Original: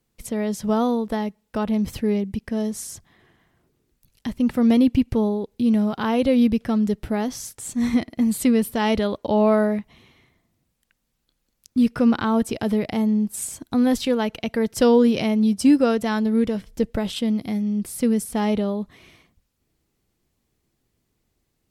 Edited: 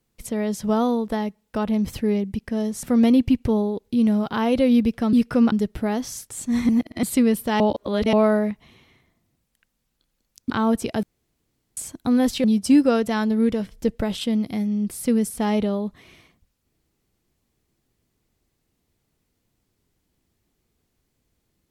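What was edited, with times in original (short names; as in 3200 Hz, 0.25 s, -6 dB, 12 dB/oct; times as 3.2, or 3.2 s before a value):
2.83–4.5 cut
7.97–8.31 reverse
8.88–9.41 reverse
11.78–12.17 move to 6.8
12.7–13.44 room tone
14.11–15.39 cut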